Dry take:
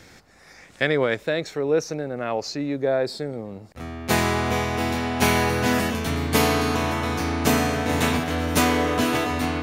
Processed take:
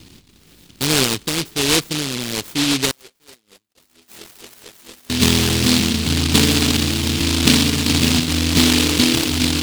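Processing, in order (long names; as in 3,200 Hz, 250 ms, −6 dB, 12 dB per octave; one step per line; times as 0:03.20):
low shelf with overshoot 500 Hz +11.5 dB, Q 1.5
0:02.91–0:05.10: LFO wah 4.4 Hz 460–2,800 Hz, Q 14
short delay modulated by noise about 3,500 Hz, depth 0.43 ms
level −5 dB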